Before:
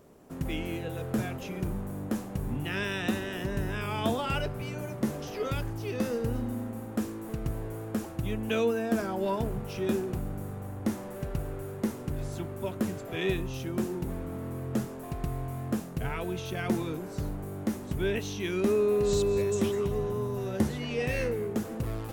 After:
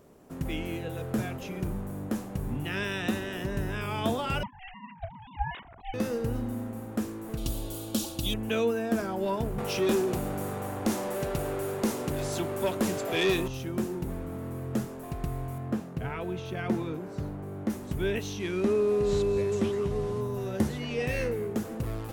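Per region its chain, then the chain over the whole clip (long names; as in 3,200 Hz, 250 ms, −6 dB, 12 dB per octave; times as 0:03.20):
0:04.43–0:05.94: three sine waves on the formant tracks + low-shelf EQ 460 Hz −5 dB + ring modulation 380 Hz
0:07.37–0:08.34: high shelf with overshoot 2,600 Hz +11 dB, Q 3 + comb filter 3.5 ms, depth 51%
0:09.58–0:13.48: dynamic equaliser 1,600 Hz, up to −6 dB, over −50 dBFS, Q 0.76 + mid-hump overdrive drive 20 dB, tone 7,500 Hz, clips at −16 dBFS
0:15.58–0:17.70: high-pass filter 65 Hz + high-shelf EQ 4,700 Hz −12 dB
0:18.39–0:20.21: linear delta modulator 64 kbit/s, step −40.5 dBFS + low-pass filter 3,600 Hz 6 dB per octave
whole clip: no processing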